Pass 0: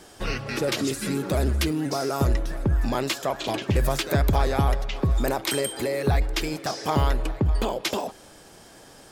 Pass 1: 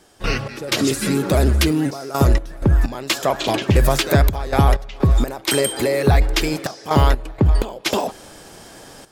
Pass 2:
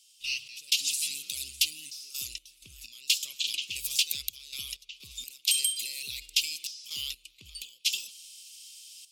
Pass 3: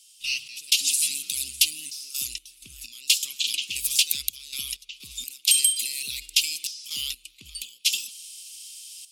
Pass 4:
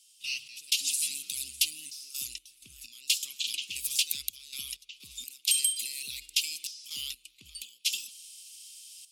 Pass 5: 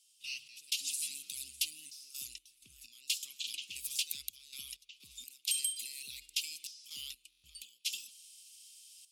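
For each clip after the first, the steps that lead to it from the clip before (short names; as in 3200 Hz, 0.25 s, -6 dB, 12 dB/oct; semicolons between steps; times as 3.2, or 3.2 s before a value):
step gate ".x.xxxxx.x" 63 bpm -12 dB; gain +7.5 dB
elliptic high-pass 2700 Hz, stop band 40 dB; gain -2 dB
fifteen-band EQ 100 Hz -4 dB, 250 Hz +5 dB, 630 Hz -10 dB, 1600 Hz +3 dB, 10000 Hz +6 dB; gain +4 dB
HPF 52 Hz; gain -6.5 dB
stuck buffer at 7.3, samples 1024, times 5; gain -7.5 dB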